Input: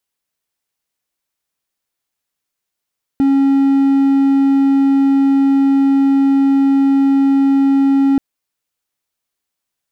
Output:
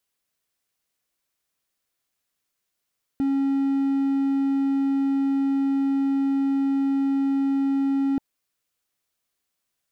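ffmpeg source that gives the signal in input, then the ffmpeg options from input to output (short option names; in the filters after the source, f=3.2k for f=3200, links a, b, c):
-f lavfi -i "aevalsrc='0.447*(1-4*abs(mod(274*t+0.25,1)-0.5))':d=4.98:s=44100"
-af "alimiter=limit=-17.5dB:level=0:latency=1:release=20,bandreject=f=880:w=12"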